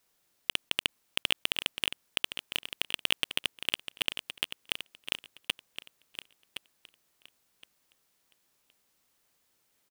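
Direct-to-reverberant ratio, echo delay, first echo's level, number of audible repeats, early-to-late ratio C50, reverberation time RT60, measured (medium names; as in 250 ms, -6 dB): no reverb, 1067 ms, -10.0 dB, 2, no reverb, no reverb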